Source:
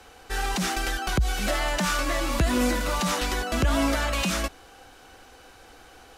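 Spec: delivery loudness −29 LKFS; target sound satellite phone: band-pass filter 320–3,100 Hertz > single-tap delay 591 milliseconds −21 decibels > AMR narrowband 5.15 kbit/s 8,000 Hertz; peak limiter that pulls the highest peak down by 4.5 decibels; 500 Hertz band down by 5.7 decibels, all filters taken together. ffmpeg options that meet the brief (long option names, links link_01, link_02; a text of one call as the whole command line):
ffmpeg -i in.wav -af "equalizer=frequency=500:width_type=o:gain=-6.5,alimiter=limit=-18dB:level=0:latency=1,highpass=320,lowpass=3100,aecho=1:1:591:0.0891,volume=6.5dB" -ar 8000 -c:a libopencore_amrnb -b:a 5150 out.amr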